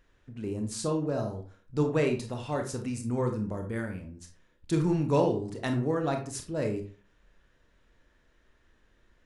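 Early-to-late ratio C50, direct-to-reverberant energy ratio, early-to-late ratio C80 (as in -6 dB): 8.5 dB, 4.0 dB, 14.0 dB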